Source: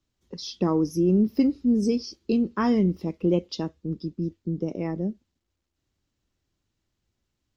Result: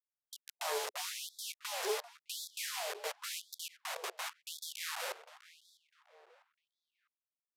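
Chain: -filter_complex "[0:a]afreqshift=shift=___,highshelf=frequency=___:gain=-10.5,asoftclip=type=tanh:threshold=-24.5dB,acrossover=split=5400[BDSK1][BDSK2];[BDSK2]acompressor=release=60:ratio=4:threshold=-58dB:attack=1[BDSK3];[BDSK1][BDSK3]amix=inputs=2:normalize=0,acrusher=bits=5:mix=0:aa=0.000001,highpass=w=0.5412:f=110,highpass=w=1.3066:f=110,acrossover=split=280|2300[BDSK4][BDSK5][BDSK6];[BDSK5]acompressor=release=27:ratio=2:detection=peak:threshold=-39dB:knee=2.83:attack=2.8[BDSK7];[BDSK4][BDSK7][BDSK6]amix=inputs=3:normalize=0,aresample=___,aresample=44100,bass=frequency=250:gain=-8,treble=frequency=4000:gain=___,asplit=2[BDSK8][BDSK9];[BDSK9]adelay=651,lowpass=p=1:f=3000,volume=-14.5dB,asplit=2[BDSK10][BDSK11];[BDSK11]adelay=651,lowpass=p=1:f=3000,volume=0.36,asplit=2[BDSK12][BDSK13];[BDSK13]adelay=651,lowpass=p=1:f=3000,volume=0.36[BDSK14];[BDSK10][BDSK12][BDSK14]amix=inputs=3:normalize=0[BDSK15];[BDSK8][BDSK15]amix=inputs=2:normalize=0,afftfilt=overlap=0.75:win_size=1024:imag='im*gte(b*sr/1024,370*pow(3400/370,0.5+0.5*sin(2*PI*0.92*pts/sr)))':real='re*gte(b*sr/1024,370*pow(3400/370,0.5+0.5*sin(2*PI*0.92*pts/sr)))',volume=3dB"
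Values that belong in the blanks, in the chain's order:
-36, 2500, 32000, 0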